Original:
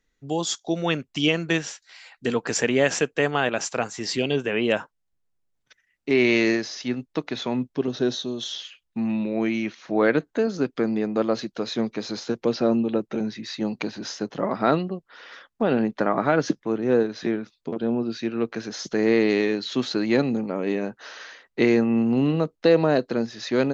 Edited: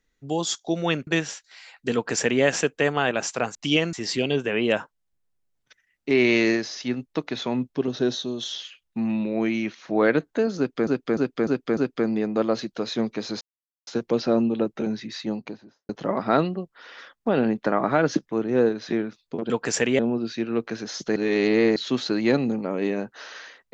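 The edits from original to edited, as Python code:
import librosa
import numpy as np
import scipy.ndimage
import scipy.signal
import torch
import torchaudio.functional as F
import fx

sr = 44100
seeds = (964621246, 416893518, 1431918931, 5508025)

y = fx.studio_fade_out(x, sr, start_s=13.43, length_s=0.8)
y = fx.edit(y, sr, fx.move(start_s=1.07, length_s=0.38, to_s=3.93),
    fx.duplicate(start_s=2.32, length_s=0.49, to_s=17.84),
    fx.repeat(start_s=10.57, length_s=0.3, count=5),
    fx.insert_silence(at_s=12.21, length_s=0.46),
    fx.reverse_span(start_s=19.01, length_s=0.6), tone=tone)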